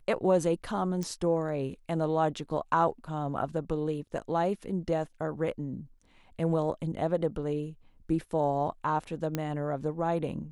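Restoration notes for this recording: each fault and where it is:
0:01.03: click −22 dBFS
0:09.35: click −16 dBFS

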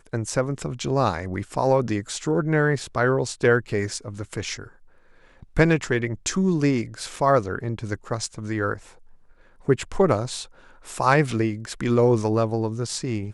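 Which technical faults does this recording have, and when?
0:07.16: drop-out 3.3 ms

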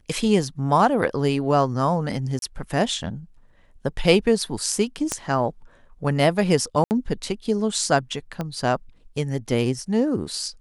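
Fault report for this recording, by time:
0:02.39–0:02.42: drop-out 32 ms
0:05.12: click −10 dBFS
0:06.84–0:06.91: drop-out 69 ms
0:08.41: click −15 dBFS

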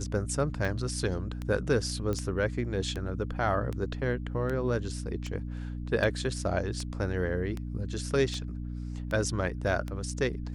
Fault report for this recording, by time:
mains hum 60 Hz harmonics 5 −36 dBFS
scratch tick 78 rpm
0:02.13: click −20 dBFS

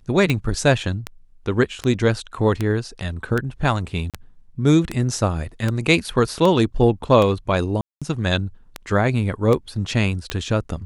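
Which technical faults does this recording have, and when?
scratch tick 78 rpm −9 dBFS
0:04.10–0:04.14: drop-out 37 ms
0:07.81–0:08.02: drop-out 206 ms

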